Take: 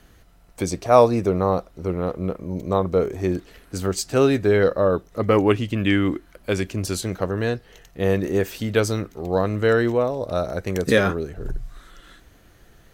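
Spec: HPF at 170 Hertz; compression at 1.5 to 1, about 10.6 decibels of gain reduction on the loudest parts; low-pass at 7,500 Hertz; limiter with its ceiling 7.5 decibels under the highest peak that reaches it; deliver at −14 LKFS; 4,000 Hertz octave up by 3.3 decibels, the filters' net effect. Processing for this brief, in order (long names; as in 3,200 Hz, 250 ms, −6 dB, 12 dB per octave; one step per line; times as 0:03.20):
high-pass filter 170 Hz
low-pass filter 7,500 Hz
parametric band 4,000 Hz +4.5 dB
downward compressor 1.5 to 1, threshold −38 dBFS
level +18 dB
brickwall limiter −1 dBFS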